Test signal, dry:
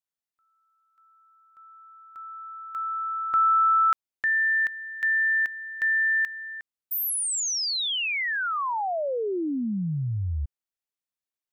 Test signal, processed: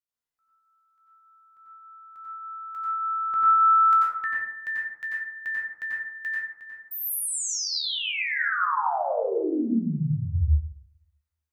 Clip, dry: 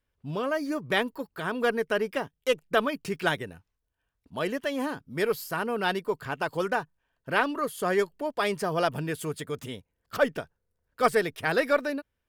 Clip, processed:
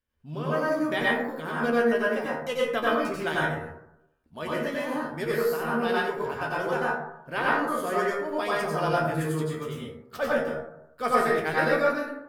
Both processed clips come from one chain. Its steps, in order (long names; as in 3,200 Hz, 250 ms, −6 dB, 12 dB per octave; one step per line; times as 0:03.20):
tuned comb filter 78 Hz, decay 0.18 s, harmonics all, mix 90%
dense smooth reverb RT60 0.82 s, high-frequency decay 0.35×, pre-delay 80 ms, DRR −6 dB